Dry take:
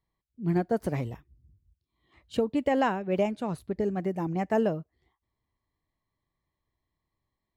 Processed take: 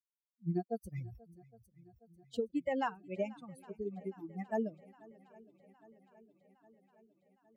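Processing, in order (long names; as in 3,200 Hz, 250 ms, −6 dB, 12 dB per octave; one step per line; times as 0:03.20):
spectral dynamics exaggerated over time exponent 3
feedback echo with a long and a short gap by turns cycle 812 ms, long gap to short 1.5 to 1, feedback 62%, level −23 dB
0:00.94–0:02.40: level that may fall only so fast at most 90 dB per second
level −5 dB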